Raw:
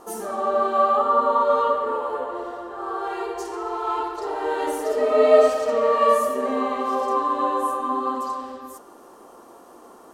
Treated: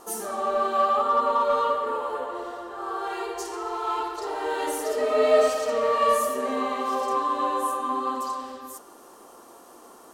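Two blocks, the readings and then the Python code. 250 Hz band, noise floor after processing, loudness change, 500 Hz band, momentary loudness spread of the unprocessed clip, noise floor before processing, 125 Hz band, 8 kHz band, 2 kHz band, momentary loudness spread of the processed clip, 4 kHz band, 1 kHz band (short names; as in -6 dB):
-4.0 dB, -49 dBFS, -3.5 dB, -4.0 dB, 12 LU, -47 dBFS, n/a, +4.0 dB, -0.5 dB, 12 LU, +2.0 dB, -2.5 dB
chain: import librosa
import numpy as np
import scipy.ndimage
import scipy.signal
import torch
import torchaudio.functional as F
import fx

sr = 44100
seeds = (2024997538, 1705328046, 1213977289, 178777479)

p1 = fx.high_shelf(x, sr, hz=2000.0, db=8.5)
p2 = 10.0 ** (-18.5 / 20.0) * np.tanh(p1 / 10.0 ** (-18.5 / 20.0))
p3 = p1 + (p2 * librosa.db_to_amplitude(-8.0))
y = p3 * librosa.db_to_amplitude(-6.5)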